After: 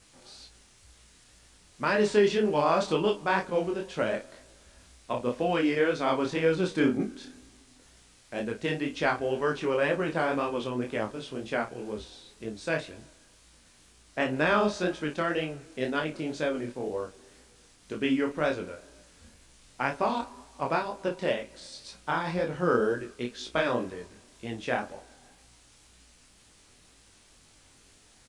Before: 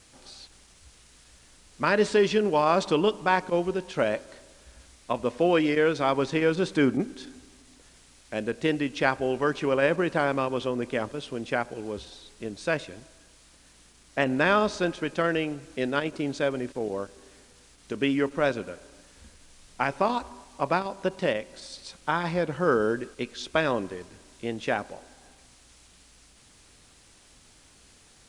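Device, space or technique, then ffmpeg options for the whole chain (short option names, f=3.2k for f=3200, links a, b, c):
double-tracked vocal: -filter_complex "[0:a]asplit=2[a][b];[b]adelay=33,volume=-8.5dB[c];[a][c]amix=inputs=2:normalize=0,flanger=delay=18:depth=7.1:speed=2"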